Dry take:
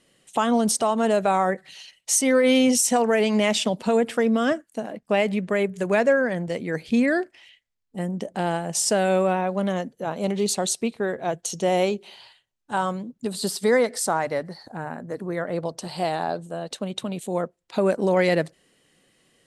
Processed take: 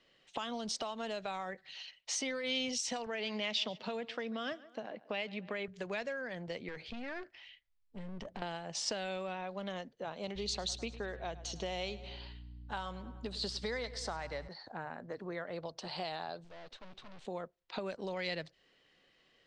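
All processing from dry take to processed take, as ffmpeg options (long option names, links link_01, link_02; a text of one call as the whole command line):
ffmpeg -i in.wav -filter_complex "[0:a]asettb=1/sr,asplit=3[link_01][link_02][link_03];[link_01]atrim=end=3.064[link_04];[link_02]atrim=start=3.06:end=5.68,asetpts=PTS-STARTPTS,afade=type=in:duration=0.004:curve=qsin,afade=type=out:start_time=2.616:duration=0.004:curve=qsin,highpass=110,lowpass=5400,aecho=1:1:139|278:0.075|0.0255,atrim=end_sample=115542[link_05];[link_03]atrim=start=5.676[link_06];[link_04][link_05]acrossfade=duration=0.004:curve1=hsin:curve2=qsin[link_07];[link_07][link_06]acrossfade=duration=0.004:curve1=qsin:curve2=hsin,asettb=1/sr,asplit=3[link_08][link_09][link_10];[link_08]atrim=end=6.684[link_11];[link_09]atrim=start=6.68:end=8.42,asetpts=PTS-STARTPTS,afade=type=in:duration=0.004:curve=qsin,afade=type=out:start_time=1.736:duration=0.004:curve=qsin,asubboost=boost=6:cutoff=210,acompressor=threshold=-27dB:ratio=16:attack=3.2:release=140:knee=1:detection=peak,aeval=exprs='clip(val(0),-1,0.0188)':channel_layout=same[link_12];[link_10]atrim=start=8.416[link_13];[link_11][link_12]acrossfade=duration=0.004:curve1=hsin:curve2=qsin[link_14];[link_14][link_13]acrossfade=duration=0.004:curve1=qsin:curve2=hsin,asettb=1/sr,asplit=3[link_15][link_16][link_17];[link_15]atrim=end=10.354[link_18];[link_16]atrim=start=10.35:end=14.48,asetpts=PTS-STARTPTS,afade=type=in:duration=0.004:curve=qsin,afade=type=out:start_time=4.126:duration=0.004:curve=qsin,aecho=1:1:103|206|309|412:0.119|0.0582|0.0285|0.014,atrim=end_sample=182133,aeval=exprs='val(0)+0.01*(sin(2*PI*60*n/s)+sin(2*PI*2*60*n/s)/2+sin(2*PI*3*60*n/s)/3+sin(2*PI*4*60*n/s)/4+sin(2*PI*5*60*n/s)/5)':channel_layout=same[link_19];[link_17]atrim=start=14.476[link_20];[link_18][link_19]acrossfade=duration=0.004:curve1=hsin:curve2=qsin[link_21];[link_21][link_20]acrossfade=duration=0.004:curve1=qsin:curve2=hsin,asettb=1/sr,asplit=3[link_22][link_23][link_24];[link_22]atrim=end=16.444[link_25];[link_23]atrim=start=16.44:end=17.25,asetpts=PTS-STARTPTS,afade=type=in:duration=0.004:curve=qsin,afade=type=out:start_time=0.806:duration=0.004:curve=qsin,aeval=exprs='(tanh(141*val(0)+0.65)-tanh(0.65))/141':channel_layout=same,acrusher=bits=3:mode=log:mix=0:aa=0.000001[link_26];[link_24]atrim=start=17.246[link_27];[link_25][link_26]acrossfade=duration=0.004:curve1=hsin:curve2=qsin[link_28];[link_28][link_27]acrossfade=duration=0.004:curve1=qsin:curve2=hsin,lowpass=frequency=4900:width=0.5412,lowpass=frequency=4900:width=1.3066,equalizer=frequency=180:width=0.54:gain=-9,acrossover=split=140|3000[link_29][link_30][link_31];[link_30]acompressor=threshold=-35dB:ratio=6[link_32];[link_29][link_32][link_31]amix=inputs=3:normalize=0,volume=-3.5dB" out.wav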